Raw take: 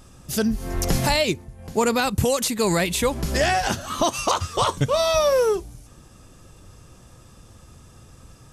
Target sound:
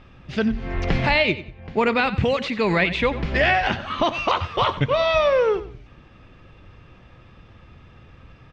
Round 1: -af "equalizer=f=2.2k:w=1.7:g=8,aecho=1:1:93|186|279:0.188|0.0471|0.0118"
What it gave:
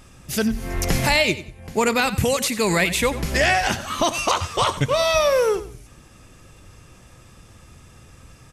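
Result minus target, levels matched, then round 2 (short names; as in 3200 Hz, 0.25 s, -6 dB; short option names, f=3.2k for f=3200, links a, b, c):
4000 Hz band +2.5 dB
-af "lowpass=f=3.6k:w=0.5412,lowpass=f=3.6k:w=1.3066,equalizer=f=2.2k:w=1.7:g=8,aecho=1:1:93|186|279:0.188|0.0471|0.0118"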